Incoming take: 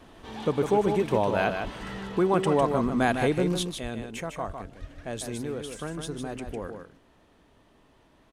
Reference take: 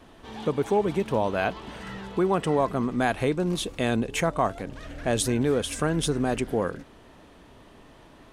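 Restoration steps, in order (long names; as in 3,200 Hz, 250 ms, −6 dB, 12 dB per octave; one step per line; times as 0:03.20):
high-pass at the plosives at 0:01.63/0:02.84/0:03.82/0:04.46/0:04.80/0:06.45
echo removal 153 ms −6.5 dB
level 0 dB, from 0:03.63 +10 dB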